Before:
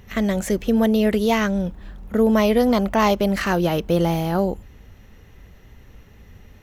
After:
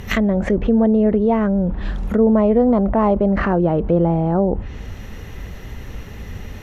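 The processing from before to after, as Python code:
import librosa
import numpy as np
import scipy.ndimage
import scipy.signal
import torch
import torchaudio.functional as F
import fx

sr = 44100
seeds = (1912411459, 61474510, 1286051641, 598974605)

p1 = fx.env_lowpass_down(x, sr, base_hz=850.0, full_db=-18.5)
p2 = fx.over_compress(p1, sr, threshold_db=-32.0, ratio=-1.0)
p3 = p1 + F.gain(torch.from_numpy(p2), -1.0).numpy()
y = F.gain(torch.from_numpy(p3), 2.5).numpy()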